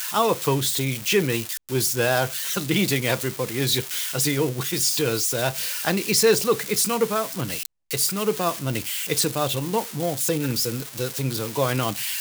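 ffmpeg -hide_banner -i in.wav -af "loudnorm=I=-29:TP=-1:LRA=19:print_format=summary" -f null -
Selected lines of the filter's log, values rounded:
Input Integrated:    -23.2 LUFS
Input True Peak:      -5.7 dBTP
Input LRA:             2.6 LU
Input Threshold:     -33.2 LUFS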